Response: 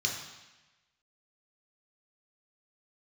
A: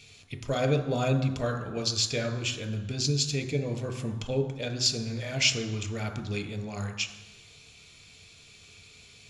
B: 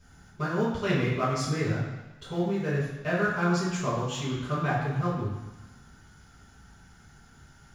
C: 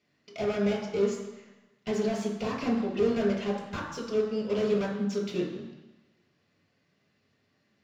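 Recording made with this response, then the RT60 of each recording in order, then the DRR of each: C; 1.1, 1.1, 1.1 seconds; 7.5, −9.0, −0.5 decibels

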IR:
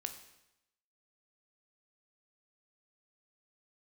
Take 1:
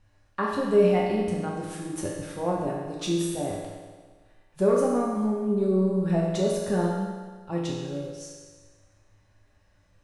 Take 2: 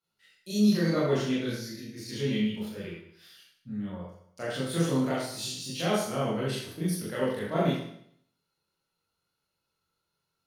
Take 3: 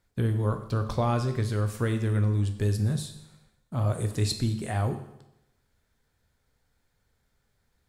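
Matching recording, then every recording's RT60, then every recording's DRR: 3; 1.5, 0.65, 0.90 seconds; −4.0, −8.5, 6.5 decibels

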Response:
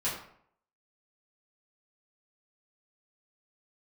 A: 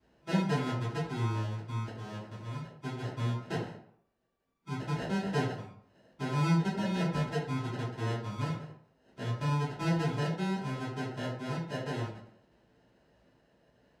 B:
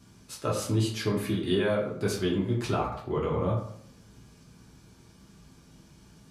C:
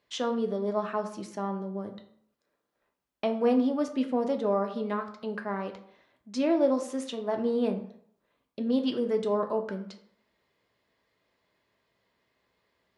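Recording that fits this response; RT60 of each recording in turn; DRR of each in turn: A; 0.65, 0.65, 0.65 seconds; −10.0, −4.0, 5.0 decibels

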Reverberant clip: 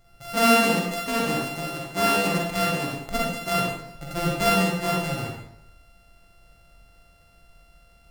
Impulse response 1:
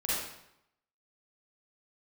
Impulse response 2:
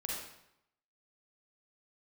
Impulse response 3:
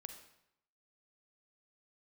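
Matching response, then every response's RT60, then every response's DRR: 2; 0.80, 0.80, 0.80 seconds; −8.5, −3.5, 6.0 decibels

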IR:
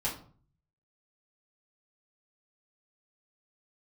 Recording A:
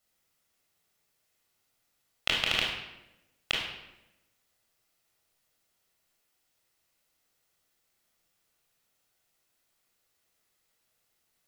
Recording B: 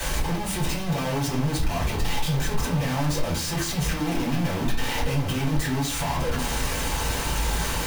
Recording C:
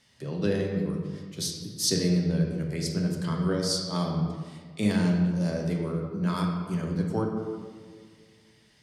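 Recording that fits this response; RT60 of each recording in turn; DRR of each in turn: B; 0.95, 0.45, 1.9 seconds; −3.0, −6.0, 0.0 decibels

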